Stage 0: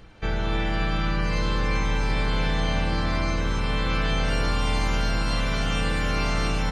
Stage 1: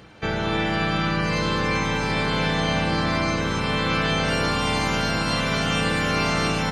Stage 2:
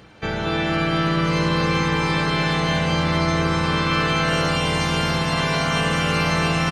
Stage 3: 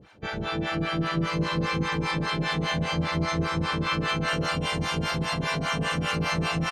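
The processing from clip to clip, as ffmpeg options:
-af "highpass=110,volume=1.78"
-af "volume=5.31,asoftclip=hard,volume=0.188,aecho=1:1:230|460|690|920|1150|1380|1610:0.631|0.322|0.164|0.0837|0.0427|0.0218|0.0111"
-filter_complex "[0:a]acrossover=split=550[s0][s1];[s0]aeval=exprs='val(0)*(1-1/2+1/2*cos(2*PI*5*n/s))':c=same[s2];[s1]aeval=exprs='val(0)*(1-1/2-1/2*cos(2*PI*5*n/s))':c=same[s3];[s2][s3]amix=inputs=2:normalize=0,volume=0.794"

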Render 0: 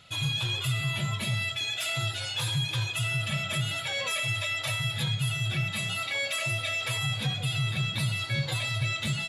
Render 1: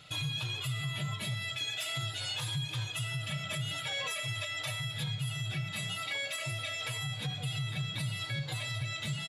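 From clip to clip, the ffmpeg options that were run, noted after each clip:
-af "aecho=1:1:6.6:0.48,alimiter=level_in=1.33:limit=0.0631:level=0:latency=1:release=455,volume=0.75"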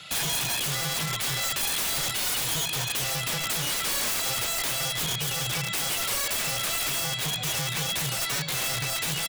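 -af "tiltshelf=f=690:g=-4.5,afreqshift=14,aeval=exprs='(mod(31.6*val(0)+1,2)-1)/31.6':c=same,volume=2.37"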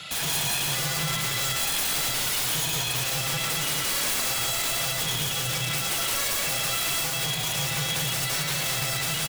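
-filter_complex "[0:a]alimiter=level_in=1.68:limit=0.0631:level=0:latency=1,volume=0.596,asplit=2[s0][s1];[s1]aecho=0:1:113.7|177.8:0.631|0.708[s2];[s0][s2]amix=inputs=2:normalize=0,volume=1.68"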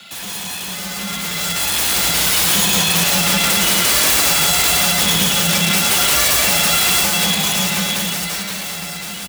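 -af "dynaudnorm=f=200:g=17:m=4.73,acrusher=bits=3:mode=log:mix=0:aa=0.000001,afreqshift=44,volume=0.891"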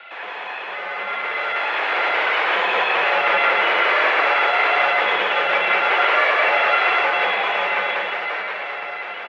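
-af "asuperpass=centerf=990:order=8:qfactor=0.5,volume=1.78"

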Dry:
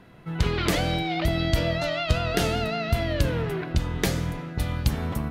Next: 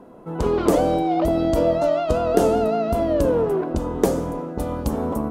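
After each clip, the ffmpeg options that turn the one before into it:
-af "equalizer=f=125:t=o:w=1:g=-8,equalizer=f=250:t=o:w=1:g=10,equalizer=f=500:t=o:w=1:g=11,equalizer=f=1000:t=o:w=1:g=9,equalizer=f=2000:t=o:w=1:g=-10,equalizer=f=4000:t=o:w=1:g=-8,equalizer=f=8000:t=o:w=1:g=4,volume=0.841"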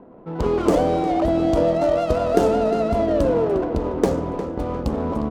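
-filter_complex "[0:a]adynamicsmooth=sensitivity=7:basefreq=1200,asplit=2[s0][s1];[s1]adelay=355,lowpass=f=3700:p=1,volume=0.316,asplit=2[s2][s3];[s3]adelay=355,lowpass=f=3700:p=1,volume=0.52,asplit=2[s4][s5];[s5]adelay=355,lowpass=f=3700:p=1,volume=0.52,asplit=2[s6][s7];[s7]adelay=355,lowpass=f=3700:p=1,volume=0.52,asplit=2[s8][s9];[s9]adelay=355,lowpass=f=3700:p=1,volume=0.52,asplit=2[s10][s11];[s11]adelay=355,lowpass=f=3700:p=1,volume=0.52[s12];[s0][s2][s4][s6][s8][s10][s12]amix=inputs=7:normalize=0"

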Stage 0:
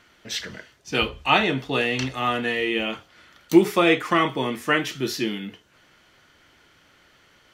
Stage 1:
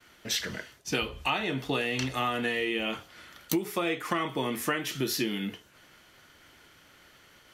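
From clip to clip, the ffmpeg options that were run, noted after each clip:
-af "agate=range=0.0224:threshold=0.002:ratio=3:detection=peak,equalizer=f=12000:t=o:w=0.9:g=9,acompressor=threshold=0.0447:ratio=10,volume=1.19"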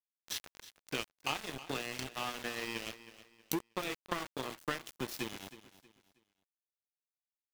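-af "aeval=exprs='val(0)*gte(abs(val(0)),0.0447)':c=same,aeval=exprs='0.335*(cos(1*acos(clip(val(0)/0.335,-1,1)))-cos(1*PI/2))+0.0299*(cos(7*acos(clip(val(0)/0.335,-1,1)))-cos(7*PI/2))':c=same,aecho=1:1:318|636|954:0.168|0.0537|0.0172,volume=0.631"

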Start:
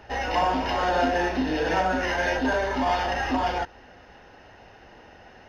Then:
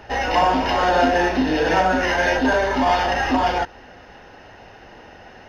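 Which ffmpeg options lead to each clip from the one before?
-af "equalizer=f=62:t=o:w=0.77:g=-2.5,volume=2"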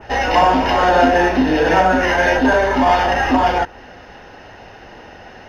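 -af "adynamicequalizer=threshold=0.00794:dfrequency=4500:dqfactor=1.1:tfrequency=4500:tqfactor=1.1:attack=5:release=100:ratio=0.375:range=2.5:mode=cutabove:tftype=bell,volume=1.68"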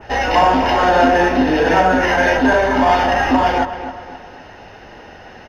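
-filter_complex "[0:a]asplit=2[s0][s1];[s1]adelay=263,lowpass=f=3000:p=1,volume=0.282,asplit=2[s2][s3];[s3]adelay=263,lowpass=f=3000:p=1,volume=0.43,asplit=2[s4][s5];[s5]adelay=263,lowpass=f=3000:p=1,volume=0.43,asplit=2[s6][s7];[s7]adelay=263,lowpass=f=3000:p=1,volume=0.43[s8];[s0][s2][s4][s6][s8]amix=inputs=5:normalize=0"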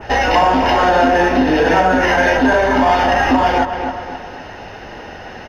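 -af "acompressor=threshold=0.1:ratio=2,volume=2"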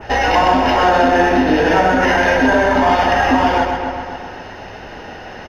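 -af "aecho=1:1:126:0.531,volume=0.891"

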